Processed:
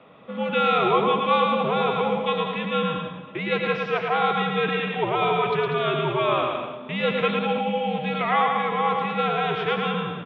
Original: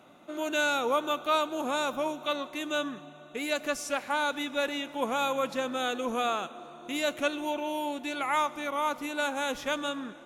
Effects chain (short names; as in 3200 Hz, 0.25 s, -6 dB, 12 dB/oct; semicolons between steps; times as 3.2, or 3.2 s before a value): transient shaper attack 0 dB, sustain +4 dB; bouncing-ball echo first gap 0.11 s, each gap 0.75×, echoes 5; mistuned SSB -100 Hz 260–3500 Hz; gain +5.5 dB